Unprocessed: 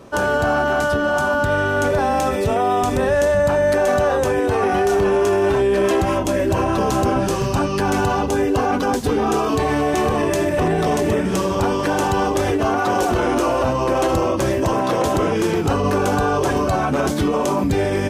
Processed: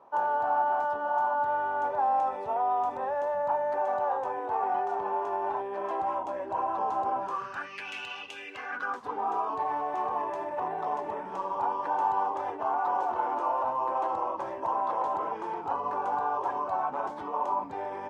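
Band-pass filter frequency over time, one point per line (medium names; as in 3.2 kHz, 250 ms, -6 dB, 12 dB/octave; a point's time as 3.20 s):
band-pass filter, Q 5.9
7.20 s 880 Hz
7.89 s 2.7 kHz
8.42 s 2.7 kHz
9.14 s 910 Hz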